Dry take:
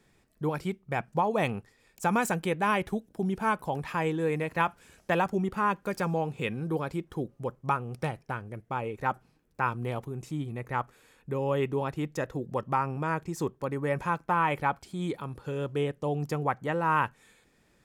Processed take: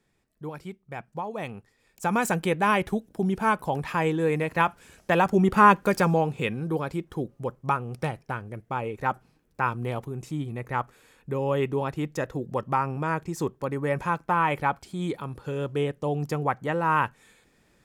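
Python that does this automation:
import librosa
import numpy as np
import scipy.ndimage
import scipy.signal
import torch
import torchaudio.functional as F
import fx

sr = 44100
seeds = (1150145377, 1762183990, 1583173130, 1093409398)

y = fx.gain(x, sr, db=fx.line((1.48, -6.5), (2.36, 4.0), (5.13, 4.0), (5.62, 11.5), (6.59, 2.5)))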